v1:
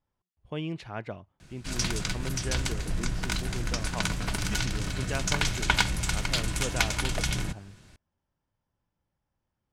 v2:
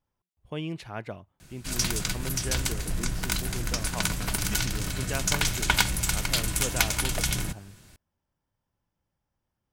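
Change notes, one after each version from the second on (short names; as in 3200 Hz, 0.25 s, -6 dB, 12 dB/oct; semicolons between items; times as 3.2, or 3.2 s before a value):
master: remove air absorption 57 m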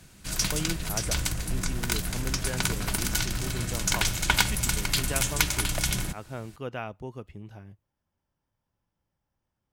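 background: entry -1.40 s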